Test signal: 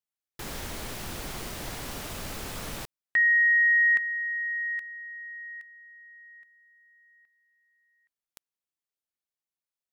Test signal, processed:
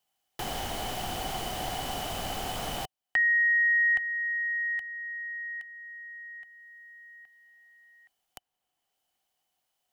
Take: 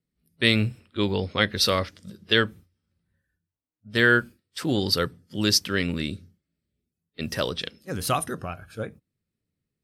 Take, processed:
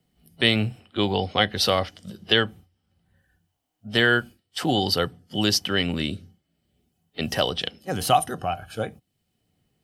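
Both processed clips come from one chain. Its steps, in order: small resonant body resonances 750/3000 Hz, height 15 dB, ringing for 30 ms; three bands compressed up and down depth 40%

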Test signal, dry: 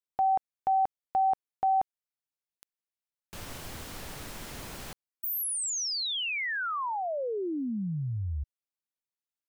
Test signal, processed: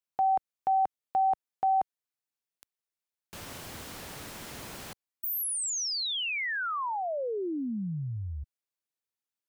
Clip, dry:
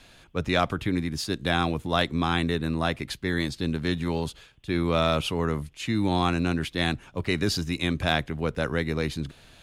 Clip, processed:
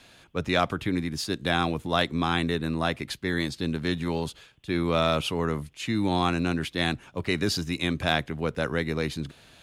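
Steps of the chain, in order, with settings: high-pass 96 Hz 6 dB/octave

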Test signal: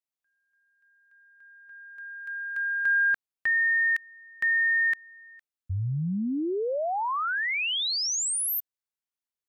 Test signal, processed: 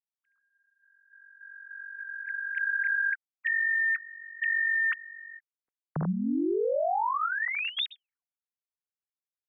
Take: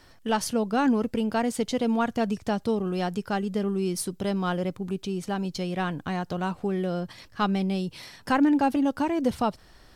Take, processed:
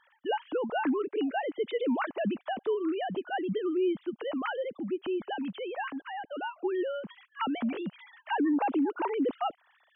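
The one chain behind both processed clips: formants replaced by sine waves; peak limiter -21.5 dBFS

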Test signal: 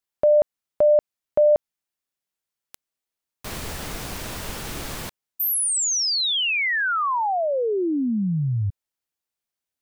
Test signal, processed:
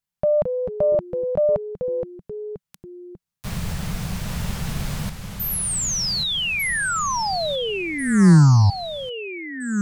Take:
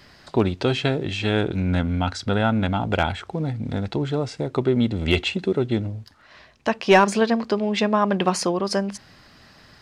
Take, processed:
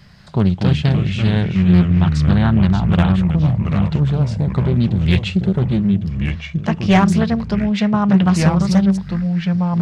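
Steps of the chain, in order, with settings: ever faster or slower copies 176 ms, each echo -3 st, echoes 3, each echo -6 dB; resonant low shelf 230 Hz +8 dB, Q 3; loudspeaker Doppler distortion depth 0.37 ms; trim -1 dB

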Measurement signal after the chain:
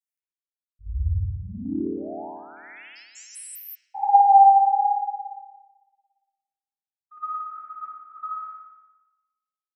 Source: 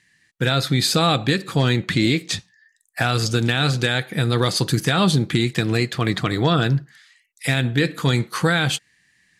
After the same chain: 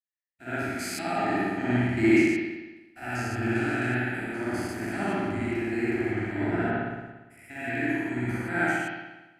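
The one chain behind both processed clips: spectrogram pixelated in time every 200 ms; vibrato 1.1 Hz 37 cents; static phaser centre 740 Hz, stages 8; spring tank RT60 2.2 s, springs 57 ms, chirp 75 ms, DRR -8 dB; three bands expanded up and down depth 100%; trim -8.5 dB

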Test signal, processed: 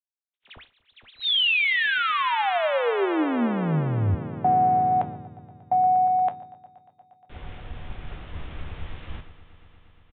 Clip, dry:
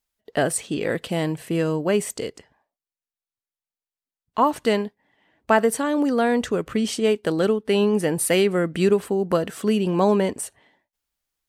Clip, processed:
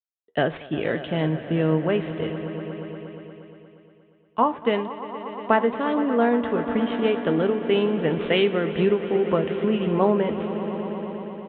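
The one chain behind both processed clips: median filter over 9 samples; on a send: echo with a slow build-up 118 ms, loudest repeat 5, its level -15 dB; on the sum: resampled via 8 kHz; feedback comb 79 Hz, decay 0.17 s, harmonics all, mix 60%; compression 3:1, threshold -25 dBFS; three bands expanded up and down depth 100%; trim +6 dB

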